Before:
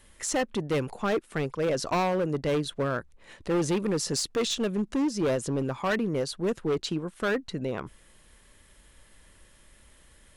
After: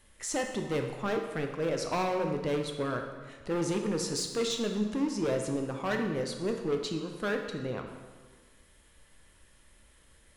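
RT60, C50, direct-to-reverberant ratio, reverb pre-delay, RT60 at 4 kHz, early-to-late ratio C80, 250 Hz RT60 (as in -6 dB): 1.5 s, 5.5 dB, 3.5 dB, 9 ms, 1.2 s, 7.0 dB, 1.4 s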